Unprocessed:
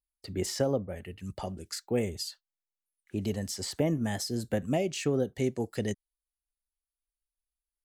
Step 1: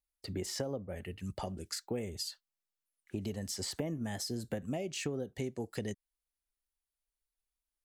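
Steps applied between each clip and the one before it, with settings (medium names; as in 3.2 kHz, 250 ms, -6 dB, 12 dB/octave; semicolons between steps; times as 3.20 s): compression 5:1, threshold -34 dBFS, peak gain reduction 11 dB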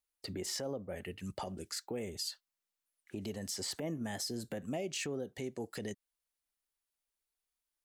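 peak limiter -30 dBFS, peak gain reduction 8 dB; bass shelf 110 Hz -12 dB; trim +2 dB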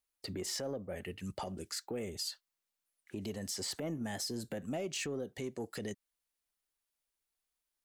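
saturation -28.5 dBFS, distortion -24 dB; trim +1 dB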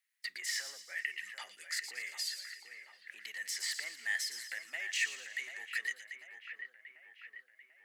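resonant high-pass 1.9 kHz, resonance Q 7.2; two-band feedback delay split 2.7 kHz, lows 741 ms, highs 115 ms, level -8 dB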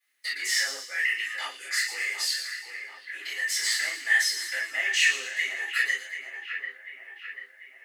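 rippled Chebyshev high-pass 260 Hz, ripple 3 dB; reverberation, pre-delay 3 ms, DRR -14 dB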